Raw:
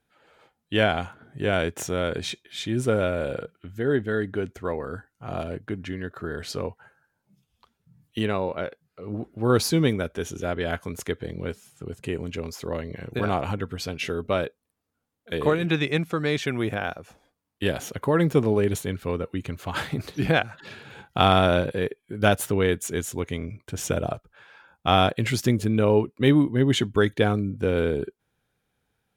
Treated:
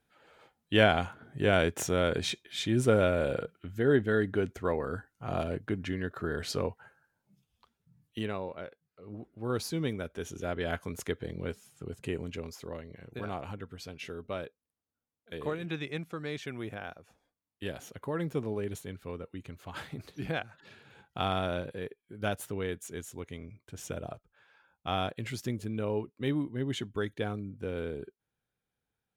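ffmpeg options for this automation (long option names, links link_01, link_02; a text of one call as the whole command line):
ffmpeg -i in.wav -af "volume=5.5dB,afade=type=out:start_time=6.58:duration=2.01:silence=0.298538,afade=type=in:start_time=9.74:duration=1.03:silence=0.446684,afade=type=out:start_time=12.1:duration=0.74:silence=0.421697" out.wav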